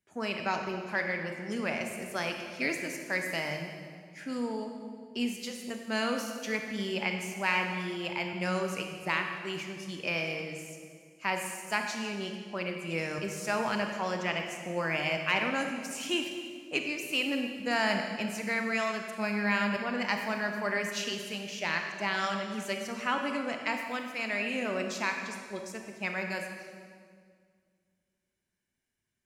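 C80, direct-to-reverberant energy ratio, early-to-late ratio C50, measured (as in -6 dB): 6.0 dB, 3.5 dB, 4.5 dB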